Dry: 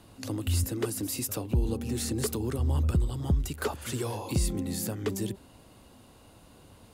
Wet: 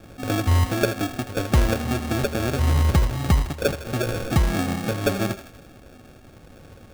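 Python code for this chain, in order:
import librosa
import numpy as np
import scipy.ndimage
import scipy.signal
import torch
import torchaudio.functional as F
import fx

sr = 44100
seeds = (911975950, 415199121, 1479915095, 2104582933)

p1 = fx.rattle_buzz(x, sr, strikes_db=-24.0, level_db=-26.0)
p2 = scipy.signal.sosfilt(scipy.signal.butter(2, 2500.0, 'lowpass', fs=sr, output='sos'), p1)
p3 = fx.rider(p2, sr, range_db=10, speed_s=2.0)
p4 = p2 + (p3 * librosa.db_to_amplitude(0.0))
p5 = fx.sample_hold(p4, sr, seeds[0], rate_hz=1000.0, jitter_pct=0)
p6 = fx.comb_fb(p5, sr, f0_hz=550.0, decay_s=0.16, harmonics='all', damping=0.0, mix_pct=60)
p7 = p6 + fx.echo_thinned(p6, sr, ms=80, feedback_pct=55, hz=510.0, wet_db=-11.5, dry=0)
y = p7 * librosa.db_to_amplitude(8.5)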